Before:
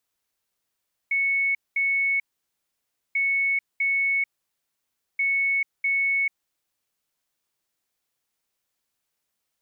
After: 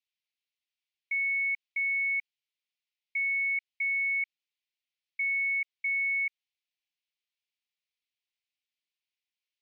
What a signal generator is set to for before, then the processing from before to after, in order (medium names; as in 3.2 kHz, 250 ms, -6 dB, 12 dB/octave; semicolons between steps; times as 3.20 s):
beep pattern sine 2.21 kHz, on 0.44 s, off 0.21 s, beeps 2, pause 0.95 s, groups 3, -20 dBFS
steep high-pass 2.2 kHz; distance through air 240 m